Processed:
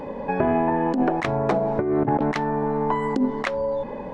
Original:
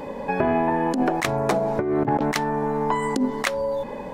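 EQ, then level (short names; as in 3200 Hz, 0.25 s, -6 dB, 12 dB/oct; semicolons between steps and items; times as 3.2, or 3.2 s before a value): tape spacing loss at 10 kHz 22 dB; +1.5 dB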